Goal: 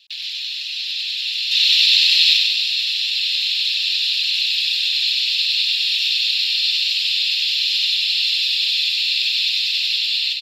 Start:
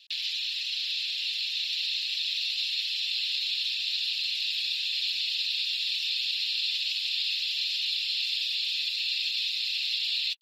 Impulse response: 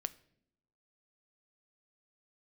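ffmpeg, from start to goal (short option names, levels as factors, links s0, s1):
-filter_complex "[0:a]asettb=1/sr,asplit=3[s0][s1][s2];[s0]atrim=end=1.514[s3];[s1]atrim=start=1.51:end=2.37,asetpts=PTS-STARTPTS,afade=t=in:d=0.004:c=qsin,afade=t=out:st=0.856:d=0.004:c=qsin,acontrast=89[s4];[s2]atrim=start=2.366[s5];[s3][s4]acrossfade=d=0.004:c1=hsin:c2=qsin[s6];[s6][s5]acrossfade=d=0.004:c1=qsin:c2=hsin,aecho=1:1:97|194|291|388|485|582|679|776:0.631|0.366|0.212|0.123|0.0714|0.0414|0.024|0.0139,dynaudnorm=f=340:g=7:m=2,volume=1.33"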